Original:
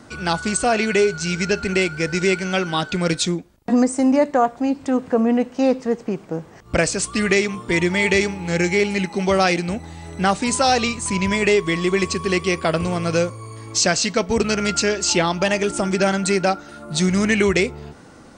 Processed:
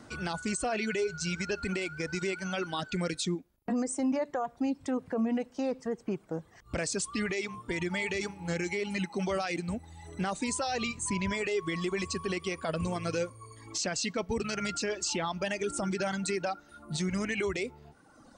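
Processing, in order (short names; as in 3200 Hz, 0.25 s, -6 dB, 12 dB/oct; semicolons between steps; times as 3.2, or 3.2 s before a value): reverb removal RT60 1.2 s; limiter -16.5 dBFS, peak gain reduction 11 dB; gain -6.5 dB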